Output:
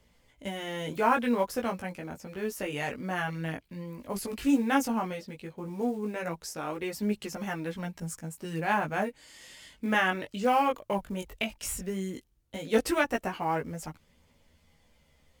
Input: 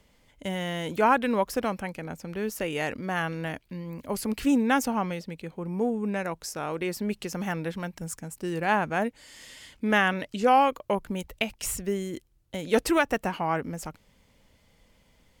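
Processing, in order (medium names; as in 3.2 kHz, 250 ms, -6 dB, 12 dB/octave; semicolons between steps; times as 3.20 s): short-mantissa float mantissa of 4-bit; chorus voices 2, 0.14 Hz, delay 17 ms, depth 4.7 ms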